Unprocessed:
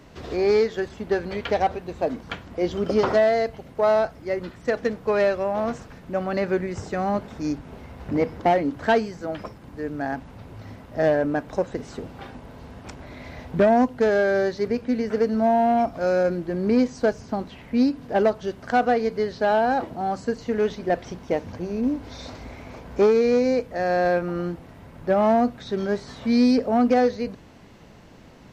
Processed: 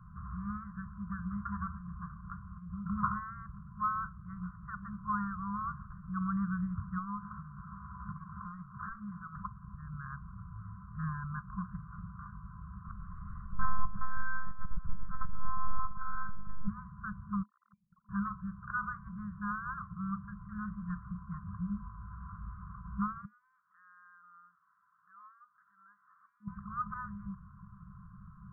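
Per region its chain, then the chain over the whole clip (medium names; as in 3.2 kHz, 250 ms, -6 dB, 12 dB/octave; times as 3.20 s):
2.14–2.86 s: dynamic bell 1.8 kHz, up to -5 dB, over -41 dBFS, Q 0.7 + compression 5:1, threshold -30 dBFS
6.98–9.36 s: high-pass 40 Hz + overdrive pedal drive 15 dB, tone 1.2 kHz, clips at -8 dBFS + compression 2.5:1, threshold -29 dBFS
12.85–16.68 s: feedback echo behind a low-pass 108 ms, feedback 78%, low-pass 1.3 kHz, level -15.5 dB + monotone LPC vocoder at 8 kHz 260 Hz
17.43–18.09 s: formants replaced by sine waves + expander -54 dBFS + level held to a coarse grid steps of 15 dB
23.25–26.48 s: compression 2.5:1, threshold -30 dBFS + Butterworth band-pass 4.1 kHz, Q 0.66
whole clip: steep low-pass 1.4 kHz 72 dB/octave; FFT band-reject 210–1000 Hz; dynamic bell 110 Hz, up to -5 dB, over -49 dBFS, Q 1.1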